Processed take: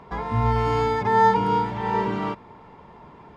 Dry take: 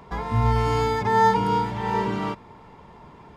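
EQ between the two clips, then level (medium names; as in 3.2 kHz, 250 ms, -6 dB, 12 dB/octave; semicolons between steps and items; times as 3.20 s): low-pass 2.9 kHz 6 dB/octave; bass shelf 140 Hz -5 dB; +1.5 dB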